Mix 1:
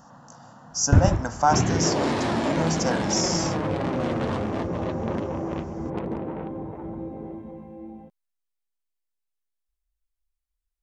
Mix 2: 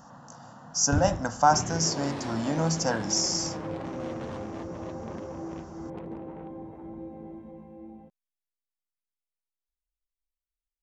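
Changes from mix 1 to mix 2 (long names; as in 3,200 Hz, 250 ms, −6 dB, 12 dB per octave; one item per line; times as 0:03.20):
first sound −11.0 dB
second sound −5.0 dB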